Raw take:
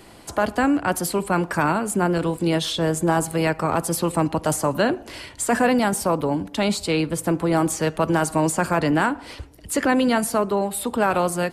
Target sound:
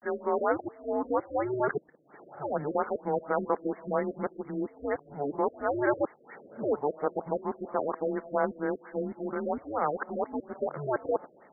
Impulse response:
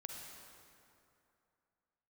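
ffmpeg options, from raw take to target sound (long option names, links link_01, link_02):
-af "areverse,highpass=frequency=450:width_type=q:width=0.5412,highpass=frequency=450:width_type=q:width=1.307,lowpass=frequency=3500:width_type=q:width=0.5176,lowpass=frequency=3500:width_type=q:width=0.7071,lowpass=frequency=3500:width_type=q:width=1.932,afreqshift=-140,afftfilt=real='re*lt(b*sr/1024,630*pow(2300/630,0.5+0.5*sin(2*PI*4.3*pts/sr)))':imag='im*lt(b*sr/1024,630*pow(2300/630,0.5+0.5*sin(2*PI*4.3*pts/sr)))':win_size=1024:overlap=0.75,volume=-5dB"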